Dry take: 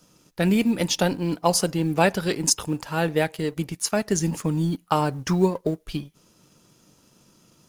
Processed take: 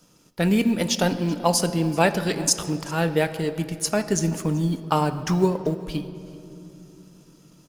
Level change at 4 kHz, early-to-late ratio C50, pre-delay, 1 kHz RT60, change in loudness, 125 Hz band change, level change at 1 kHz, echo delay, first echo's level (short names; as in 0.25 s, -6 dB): 0.0 dB, 12.0 dB, 4 ms, 2.4 s, +0.5 dB, +1.0 dB, +0.5 dB, 0.384 s, -21.5 dB